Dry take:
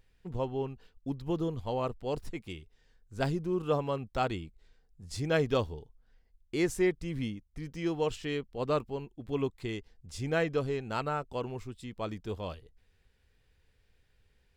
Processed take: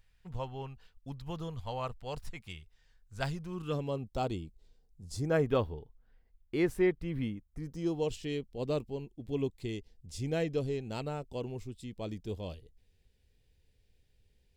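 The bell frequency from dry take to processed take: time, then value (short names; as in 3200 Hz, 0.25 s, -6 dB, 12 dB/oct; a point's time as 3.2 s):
bell -14 dB 1.3 oct
3.48 s 330 Hz
3.96 s 1700 Hz
5.05 s 1700 Hz
5.6 s 6800 Hz
7.18 s 6800 Hz
8.08 s 1300 Hz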